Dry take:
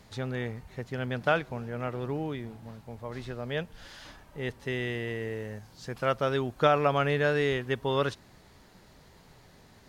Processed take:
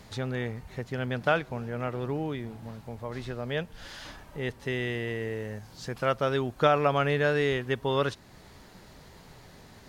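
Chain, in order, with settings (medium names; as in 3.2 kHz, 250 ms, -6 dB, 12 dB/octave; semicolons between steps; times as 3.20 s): in parallel at -2.5 dB: compression, threshold -44 dBFS, peak gain reduction 24 dB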